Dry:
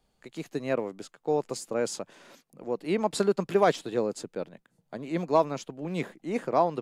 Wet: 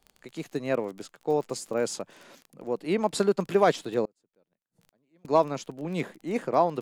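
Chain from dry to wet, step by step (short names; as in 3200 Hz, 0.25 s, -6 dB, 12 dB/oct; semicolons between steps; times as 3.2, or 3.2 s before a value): crackle 20/s -37 dBFS; 4.05–5.25 flipped gate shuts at -37 dBFS, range -35 dB; gain +1 dB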